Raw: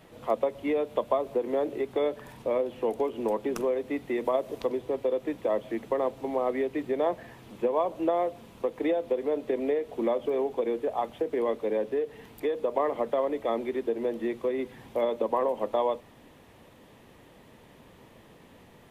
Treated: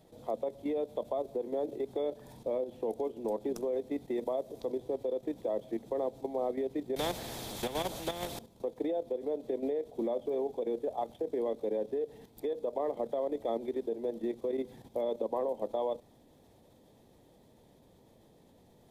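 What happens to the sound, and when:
6.96–8.39 s: spectrum-flattening compressor 4:1
whole clip: high-order bell 1.7 kHz -10.5 dB; band-stop 2.9 kHz, Q 13; level held to a coarse grid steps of 10 dB; trim -1.5 dB

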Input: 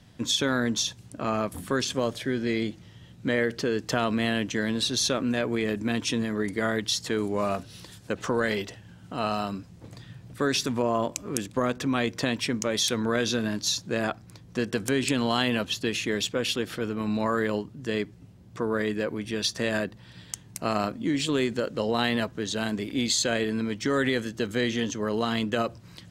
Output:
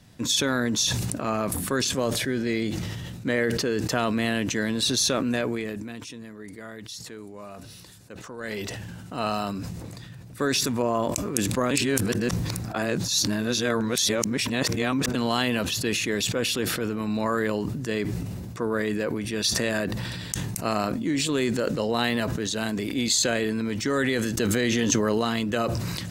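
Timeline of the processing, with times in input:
5.37–8.71 s: dip -14.5 dB, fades 0.34 s
11.71–15.15 s: reverse
24.37–25.18 s: level flattener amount 100%
whole clip: treble shelf 8.4 kHz +9 dB; band-stop 3.2 kHz, Q 14; decay stretcher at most 22 dB/s

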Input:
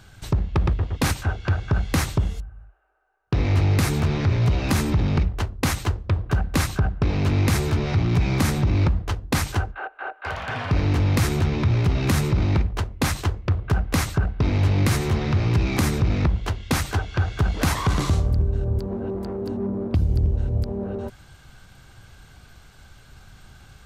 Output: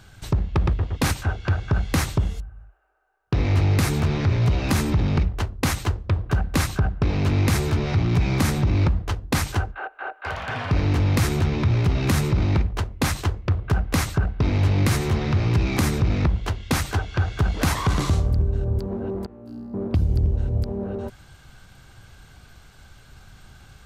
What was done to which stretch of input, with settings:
19.26–19.74 s: feedback comb 59 Hz, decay 0.94 s, mix 100%

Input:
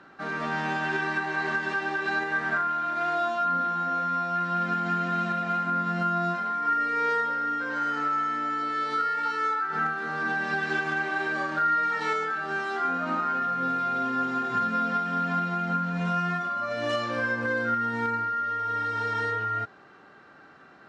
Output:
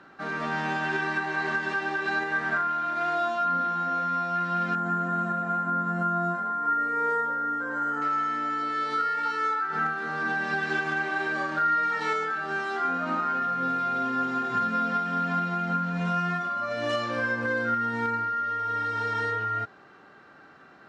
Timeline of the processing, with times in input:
4.75–8.02 s: high-order bell 3.5 kHz -14 dB

